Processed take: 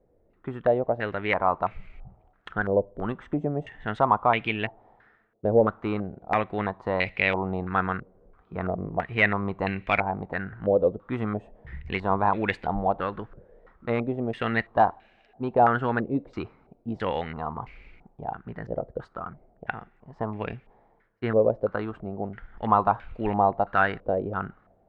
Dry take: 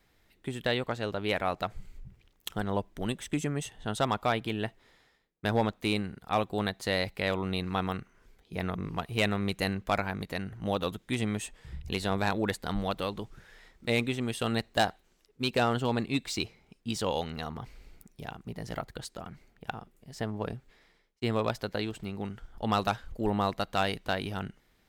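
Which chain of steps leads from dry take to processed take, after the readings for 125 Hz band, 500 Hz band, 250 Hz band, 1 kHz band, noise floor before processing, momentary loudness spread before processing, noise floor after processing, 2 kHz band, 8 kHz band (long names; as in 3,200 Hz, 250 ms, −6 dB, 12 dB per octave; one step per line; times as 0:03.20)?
+1.5 dB, +6.5 dB, +2.0 dB, +8.0 dB, −68 dBFS, 12 LU, −64 dBFS, +6.0 dB, below −25 dB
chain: coupled-rooms reverb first 0.29 s, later 2.5 s, from −20 dB, DRR 19.5 dB
low-pass on a step sequencer 3 Hz 530–2,400 Hz
level +1.5 dB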